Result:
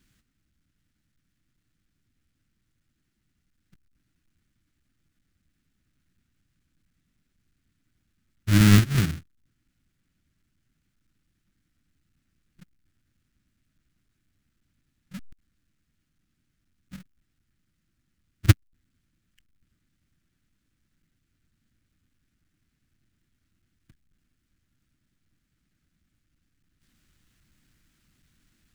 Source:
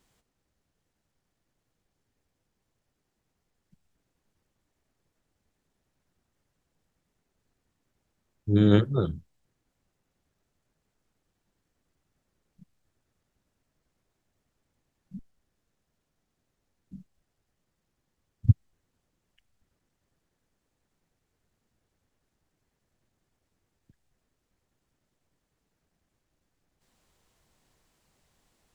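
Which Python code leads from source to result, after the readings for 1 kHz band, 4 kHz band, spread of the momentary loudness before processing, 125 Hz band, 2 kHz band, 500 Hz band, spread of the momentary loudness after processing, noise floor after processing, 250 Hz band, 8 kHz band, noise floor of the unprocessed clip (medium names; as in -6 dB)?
+6.0 dB, +10.0 dB, 16 LU, +4.5 dB, +12.5 dB, -8.0 dB, 17 LU, -76 dBFS, +2.5 dB, no reading, -80 dBFS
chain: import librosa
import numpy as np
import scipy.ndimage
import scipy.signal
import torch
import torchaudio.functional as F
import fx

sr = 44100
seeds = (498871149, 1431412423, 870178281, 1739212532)

y = fx.halfwave_hold(x, sr)
y = fx.band_shelf(y, sr, hz=650.0, db=-15.0, octaves=1.7)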